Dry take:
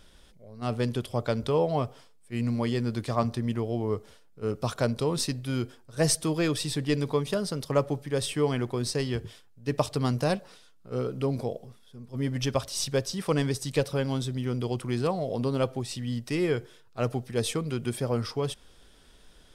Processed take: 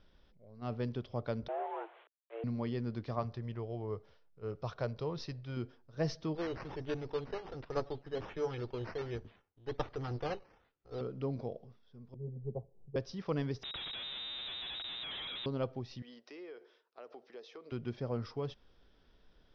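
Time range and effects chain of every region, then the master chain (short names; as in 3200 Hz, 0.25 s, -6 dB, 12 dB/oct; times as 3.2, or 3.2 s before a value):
1.48–2.44 delta modulation 16 kbps, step -40.5 dBFS + HPF 230 Hz + frequency shift +220 Hz
3.19–5.57 LPF 8200 Hz + bell 250 Hz -9 dB 0.63 oct
6.35–11.01 minimum comb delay 2.3 ms + Chebyshev low-pass 6100 Hz + decimation with a swept rate 10×, swing 60% 1.3 Hz
12.14–12.96 steep low-pass 720 Hz 48 dB/oct + fixed phaser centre 410 Hz, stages 8 + three-band expander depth 70%
13.63–15.46 formant sharpening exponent 3 + Schmitt trigger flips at -39 dBFS + inverted band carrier 3800 Hz
16.02–17.72 HPF 360 Hz 24 dB/oct + compressor 5:1, threshold -37 dBFS
whole clip: steep low-pass 5800 Hz 72 dB/oct; high shelf 2300 Hz -8 dB; gain -8.5 dB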